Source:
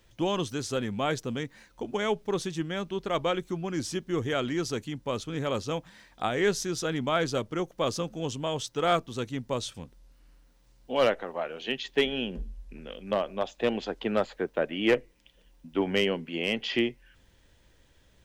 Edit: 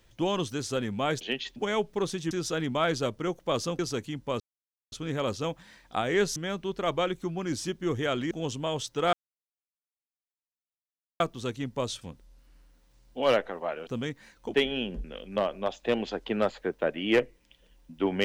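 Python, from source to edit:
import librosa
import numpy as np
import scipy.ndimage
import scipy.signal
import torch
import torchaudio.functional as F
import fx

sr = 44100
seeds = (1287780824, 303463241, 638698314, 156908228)

y = fx.edit(x, sr, fx.swap(start_s=1.21, length_s=0.67, other_s=11.6, other_length_s=0.35),
    fx.swap(start_s=2.63, length_s=1.95, other_s=6.63, other_length_s=1.48),
    fx.insert_silence(at_s=5.19, length_s=0.52),
    fx.insert_silence(at_s=8.93, length_s=2.07),
    fx.cut(start_s=12.45, length_s=0.34), tone=tone)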